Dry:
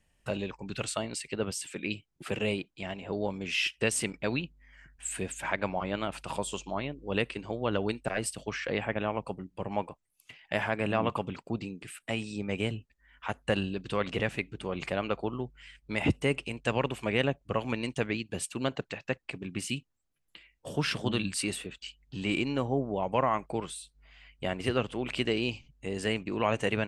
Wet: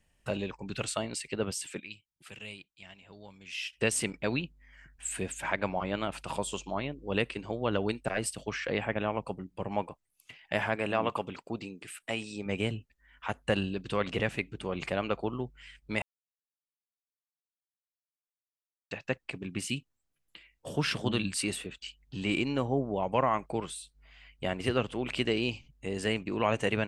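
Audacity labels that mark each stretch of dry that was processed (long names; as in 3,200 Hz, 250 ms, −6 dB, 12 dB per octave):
1.800000	3.730000	guitar amp tone stack bass-middle-treble 5-5-5
10.760000	12.460000	bass and treble bass −7 dB, treble +1 dB
16.020000	18.910000	silence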